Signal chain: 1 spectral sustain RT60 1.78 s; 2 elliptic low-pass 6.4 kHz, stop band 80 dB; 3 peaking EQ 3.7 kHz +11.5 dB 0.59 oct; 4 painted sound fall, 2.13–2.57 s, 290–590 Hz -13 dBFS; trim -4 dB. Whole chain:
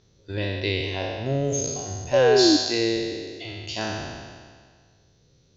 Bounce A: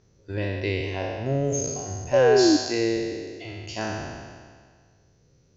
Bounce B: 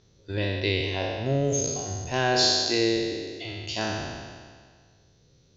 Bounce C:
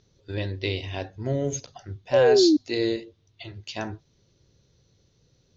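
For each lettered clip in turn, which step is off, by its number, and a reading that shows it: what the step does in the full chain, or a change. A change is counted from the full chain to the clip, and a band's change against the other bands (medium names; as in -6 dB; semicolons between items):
3, 4 kHz band -6.0 dB; 4, 500 Hz band -5.0 dB; 1, 4 kHz band -3.5 dB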